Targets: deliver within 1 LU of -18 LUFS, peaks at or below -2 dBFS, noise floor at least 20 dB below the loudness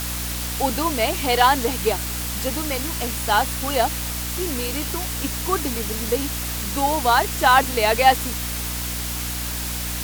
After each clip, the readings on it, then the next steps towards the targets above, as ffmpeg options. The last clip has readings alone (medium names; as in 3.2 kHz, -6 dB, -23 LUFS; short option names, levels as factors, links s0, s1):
hum 60 Hz; highest harmonic 300 Hz; hum level -28 dBFS; noise floor -27 dBFS; noise floor target -42 dBFS; loudness -21.5 LUFS; peak level -1.5 dBFS; loudness target -18.0 LUFS
-> -af "bandreject=f=60:t=h:w=4,bandreject=f=120:t=h:w=4,bandreject=f=180:t=h:w=4,bandreject=f=240:t=h:w=4,bandreject=f=300:t=h:w=4"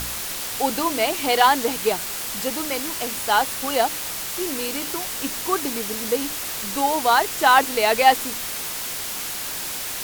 hum not found; noise floor -30 dBFS; noise floor target -42 dBFS
-> -af "afftdn=nr=12:nf=-30"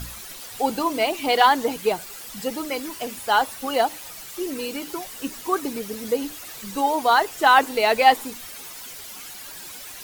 noise floor -39 dBFS; noise floor target -43 dBFS
-> -af "afftdn=nr=6:nf=-39"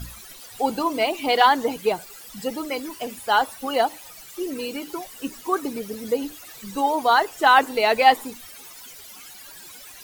noise floor -43 dBFS; loudness -22.5 LUFS; peak level -2.5 dBFS; loudness target -18.0 LUFS
-> -af "volume=1.68,alimiter=limit=0.794:level=0:latency=1"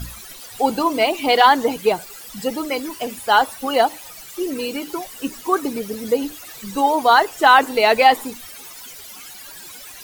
loudness -18.5 LUFS; peak level -2.0 dBFS; noise floor -39 dBFS